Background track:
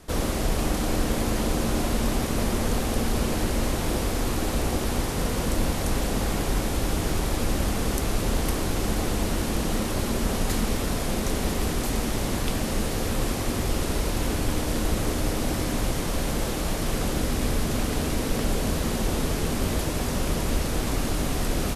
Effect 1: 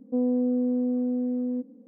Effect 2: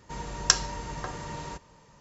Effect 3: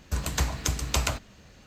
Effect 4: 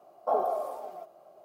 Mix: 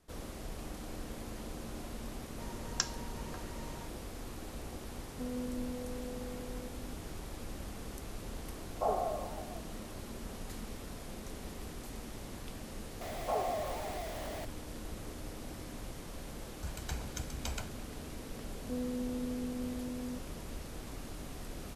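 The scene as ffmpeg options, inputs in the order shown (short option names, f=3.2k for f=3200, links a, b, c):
-filter_complex "[1:a]asplit=2[a][b];[4:a]asplit=2[c][d];[0:a]volume=-18.5dB[e];[a]aecho=1:1:545:0.398[f];[d]aeval=exprs='val(0)+0.5*0.0355*sgn(val(0))':c=same[g];[3:a]aecho=1:1:1.3:0.58[h];[2:a]atrim=end=2,asetpts=PTS-STARTPTS,volume=-12.5dB,afade=t=in:d=0.004:c=hsin,afade=t=out:st=1.996:d=0.004:c=hsin,adelay=2300[i];[f]atrim=end=1.87,asetpts=PTS-STARTPTS,volume=-15dB,afade=t=in:d=0.004:c=hsin,afade=t=out:st=1.866:d=0.004:c=hsin,adelay=5070[j];[c]atrim=end=1.44,asetpts=PTS-STARTPTS,volume=-5.5dB,afade=t=in:d=0.004:c=hsin,afade=t=out:st=1.436:d=0.004:c=hsin,adelay=8540[k];[g]atrim=end=1.44,asetpts=PTS-STARTPTS,volume=-9dB,afade=t=in:d=0.004:c=hsin,afade=t=out:st=1.436:d=0.004:c=hsin,adelay=13010[l];[h]atrim=end=1.66,asetpts=PTS-STARTPTS,volume=-16dB,afade=t=in:d=0.004:c=hsin,afade=t=out:st=1.656:d=0.004:c=hsin,adelay=16510[m];[b]atrim=end=1.87,asetpts=PTS-STARTPTS,volume=-13dB,afade=t=in:d=0.004:c=hsin,afade=t=out:st=1.866:d=0.004:c=hsin,adelay=18570[n];[e][i][j][k][l][m][n]amix=inputs=7:normalize=0"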